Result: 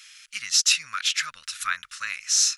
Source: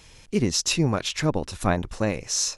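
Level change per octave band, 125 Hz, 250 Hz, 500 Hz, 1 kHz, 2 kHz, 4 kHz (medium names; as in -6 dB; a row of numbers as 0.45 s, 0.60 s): under -35 dB, under -35 dB, under -35 dB, -3.5 dB, +5.0 dB, +5.0 dB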